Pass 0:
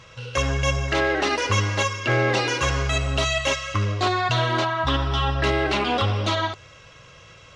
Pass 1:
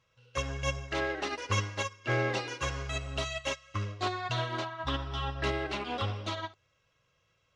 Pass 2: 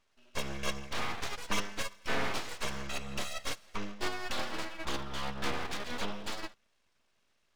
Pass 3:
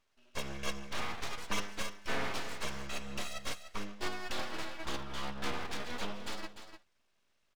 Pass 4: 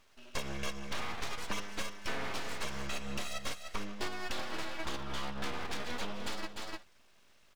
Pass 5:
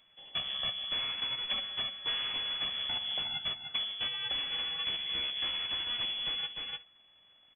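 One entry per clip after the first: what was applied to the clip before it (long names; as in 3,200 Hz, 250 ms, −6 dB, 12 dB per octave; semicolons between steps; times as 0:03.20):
expander for the loud parts 2.5 to 1, over −31 dBFS; level −6.5 dB
full-wave rectification
single-tap delay 298 ms −10 dB; level −3 dB
downward compressor 5 to 1, threshold −45 dBFS, peak gain reduction 16 dB; level +12 dB
voice inversion scrambler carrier 3,400 Hz; level −2 dB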